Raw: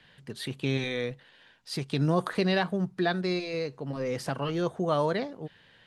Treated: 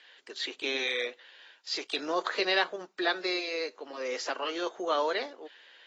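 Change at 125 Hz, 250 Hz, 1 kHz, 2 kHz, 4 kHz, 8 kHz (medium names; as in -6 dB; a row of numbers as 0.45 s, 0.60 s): under -30 dB, -9.5 dB, 0.0 dB, +3.5 dB, +5.0 dB, +2.0 dB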